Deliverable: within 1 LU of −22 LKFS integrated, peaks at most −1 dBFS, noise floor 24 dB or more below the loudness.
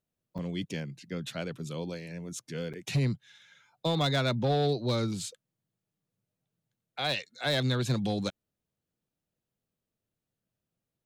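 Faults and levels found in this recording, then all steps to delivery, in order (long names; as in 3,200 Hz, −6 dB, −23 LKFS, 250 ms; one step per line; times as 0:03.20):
share of clipped samples 0.4%; peaks flattened at −21.0 dBFS; number of dropouts 2; longest dropout 7.1 ms; integrated loudness −31.5 LKFS; sample peak −21.0 dBFS; target loudness −22.0 LKFS
→ clipped peaks rebuilt −21 dBFS
repair the gap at 0:00.38/0:02.73, 7.1 ms
level +9.5 dB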